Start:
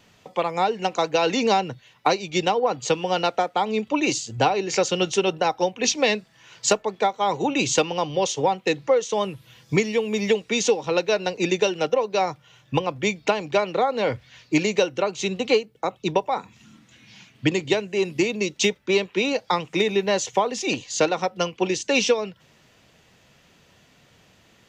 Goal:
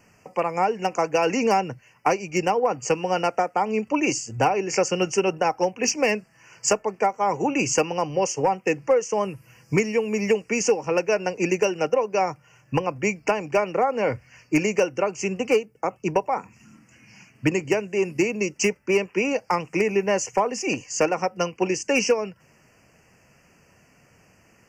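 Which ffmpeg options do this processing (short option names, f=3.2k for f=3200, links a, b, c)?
-af "volume=12dB,asoftclip=hard,volume=-12dB,asuperstop=centerf=3700:order=8:qfactor=1.9"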